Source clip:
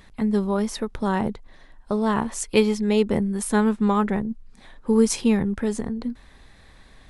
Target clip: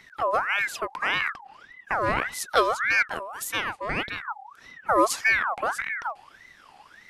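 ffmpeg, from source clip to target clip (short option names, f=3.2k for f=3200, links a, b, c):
-filter_complex "[0:a]asettb=1/sr,asplit=3[a][b][c];[a]atrim=end=3.024[d];[b]atrim=start=3.02:end=4.28,asetpts=PTS-STARTPTS,afade=t=in:d=0.004:c=qsin,afade=t=out:st=1.256:d=0.004:c=qsin,lowshelf=f=420:g=-12[e];[c]atrim=start=4.276[f];[d][e]acrossfade=d=0.004:c1=hsin:c2=qsin[g];[g][f]acrossfade=d=0.004:c1=qsin:c2=hsin,aeval=exprs='val(0)*sin(2*PI*1400*n/s+1400*0.45/1.7*sin(2*PI*1.7*n/s))':c=same"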